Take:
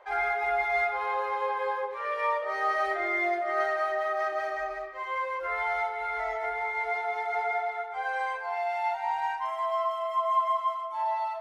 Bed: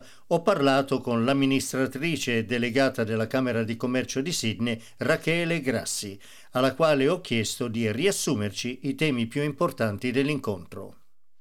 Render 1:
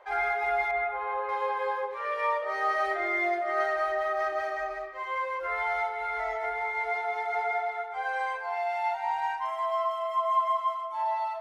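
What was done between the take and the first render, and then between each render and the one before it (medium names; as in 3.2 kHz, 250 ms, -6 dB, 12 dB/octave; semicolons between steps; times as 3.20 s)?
0.71–1.29 s: distance through air 400 m; 3.73–4.42 s: bass shelf 150 Hz +7 dB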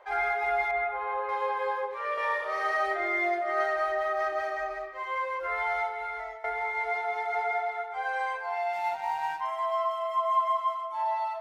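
2.14–2.77 s: flutter echo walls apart 6 m, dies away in 0.93 s; 5.66–6.44 s: fade out equal-power, to -15 dB; 8.73–9.41 s: companding laws mixed up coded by A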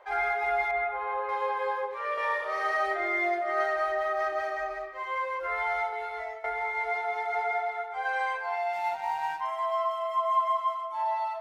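5.91–6.46 s: doubling 14 ms -2.5 dB; 8.05–8.56 s: peaking EQ 2.6 kHz +3 dB 2.2 oct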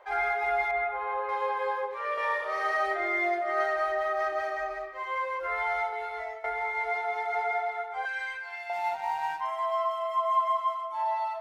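8.05–8.70 s: high-order bell 700 Hz -14.5 dB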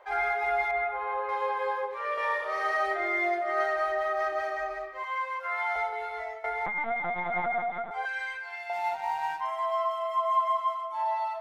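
5.04–5.76 s: high-pass 660 Hz 24 dB/octave; 6.66–7.91 s: LPC vocoder at 8 kHz pitch kept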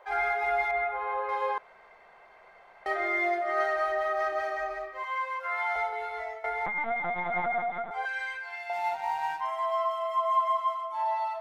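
1.58–2.86 s: room tone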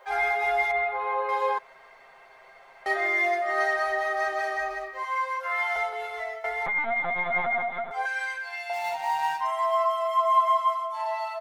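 treble shelf 2.8 kHz +9 dB; comb 7.5 ms, depth 61%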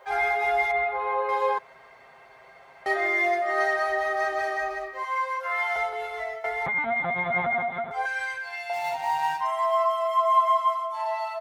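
high-pass 54 Hz 24 dB/octave; bass shelf 240 Hz +12 dB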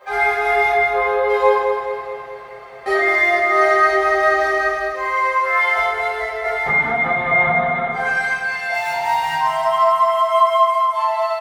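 feedback delay 212 ms, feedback 59%, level -7.5 dB; simulated room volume 78 m³, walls mixed, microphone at 2.1 m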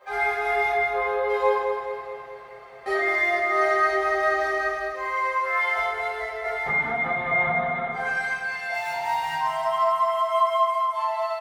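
trim -7 dB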